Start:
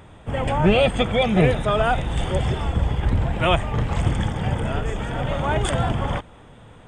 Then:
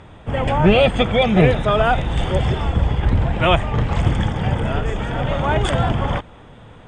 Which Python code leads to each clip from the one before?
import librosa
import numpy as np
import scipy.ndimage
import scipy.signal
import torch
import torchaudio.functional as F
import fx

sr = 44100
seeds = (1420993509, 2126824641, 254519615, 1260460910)

y = scipy.signal.sosfilt(scipy.signal.butter(2, 6200.0, 'lowpass', fs=sr, output='sos'), x)
y = F.gain(torch.from_numpy(y), 3.5).numpy()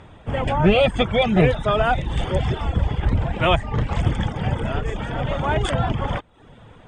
y = fx.dereverb_blind(x, sr, rt60_s=0.54)
y = F.gain(torch.from_numpy(y), -2.0).numpy()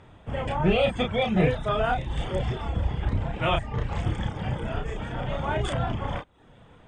y = fx.doubler(x, sr, ms=32.0, db=-4)
y = F.gain(torch.from_numpy(y), -7.5).numpy()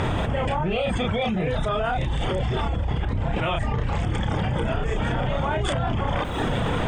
y = fx.env_flatten(x, sr, amount_pct=100)
y = F.gain(torch.from_numpy(y), -6.0).numpy()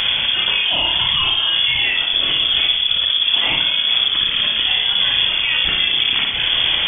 y = fx.room_flutter(x, sr, wall_m=9.9, rt60_s=0.78)
y = fx.freq_invert(y, sr, carrier_hz=3400)
y = F.gain(torch.from_numpy(y), 4.0).numpy()